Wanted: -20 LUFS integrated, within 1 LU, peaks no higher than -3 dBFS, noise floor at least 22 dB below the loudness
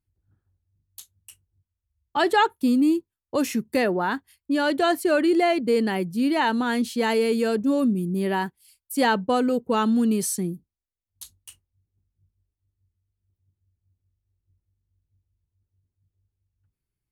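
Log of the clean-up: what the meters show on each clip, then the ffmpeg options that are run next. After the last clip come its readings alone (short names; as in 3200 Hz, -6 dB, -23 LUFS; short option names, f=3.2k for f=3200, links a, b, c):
loudness -23.0 LUFS; peak -9.0 dBFS; loudness target -20.0 LUFS
-> -af "volume=3dB"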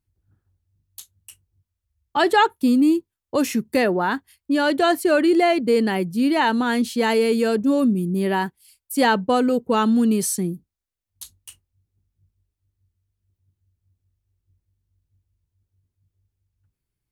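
loudness -20.0 LUFS; peak -6.0 dBFS; noise floor -84 dBFS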